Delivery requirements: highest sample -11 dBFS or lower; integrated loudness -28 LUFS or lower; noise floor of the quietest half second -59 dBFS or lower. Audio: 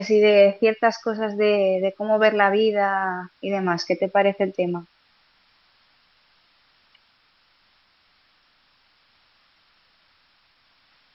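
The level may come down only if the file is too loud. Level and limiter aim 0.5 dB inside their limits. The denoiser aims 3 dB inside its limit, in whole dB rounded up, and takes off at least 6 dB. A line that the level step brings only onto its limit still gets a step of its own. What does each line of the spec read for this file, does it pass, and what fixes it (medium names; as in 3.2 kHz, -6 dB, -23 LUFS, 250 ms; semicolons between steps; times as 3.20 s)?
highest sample -3.5 dBFS: fail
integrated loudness -20.5 LUFS: fail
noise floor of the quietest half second -62 dBFS: pass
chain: trim -8 dB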